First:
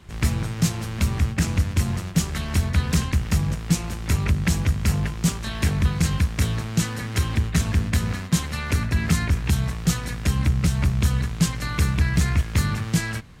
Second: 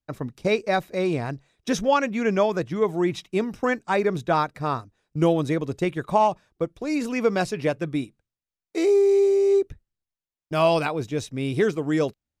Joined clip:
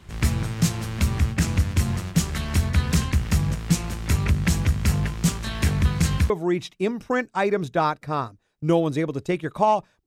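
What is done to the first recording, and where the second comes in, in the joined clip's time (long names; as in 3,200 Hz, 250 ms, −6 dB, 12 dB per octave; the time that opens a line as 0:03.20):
first
0:06.30: continue with second from 0:02.83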